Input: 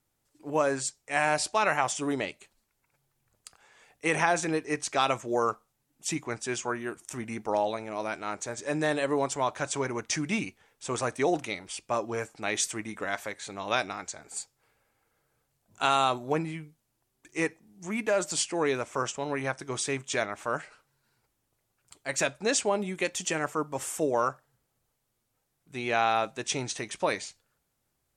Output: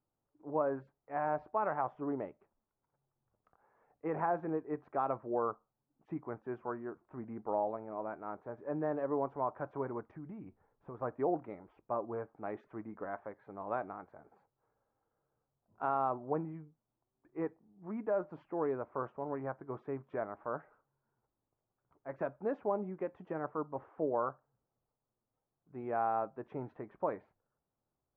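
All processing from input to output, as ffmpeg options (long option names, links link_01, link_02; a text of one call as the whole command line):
ffmpeg -i in.wav -filter_complex "[0:a]asettb=1/sr,asplit=3[link_01][link_02][link_03];[link_01]atrim=end=10.114[link_04];[link_02]atrim=start=10.11:end=11.02,asetpts=PTS-STARTPTS,afade=type=in:duration=0.004:curve=qsin,afade=type=out:start_time=0.906:duration=0.004:curve=qsin,lowshelf=frequency=120:gain=11,acompressor=threshold=-35dB:ratio=8:attack=3.2:release=140:knee=1:detection=peak[link_05];[link_03]atrim=start=11.016[link_06];[link_04][link_05]acrossfade=duration=0.004:curve1=hsin:curve2=qsin[link_07];[link_07][link_06]acrossfade=duration=0.004:curve1=qsin:curve2=hsin,lowpass=frequency=1200:width=0.5412,lowpass=frequency=1200:width=1.3066,lowshelf=frequency=110:gain=-5.5,volume=-6dB" out.wav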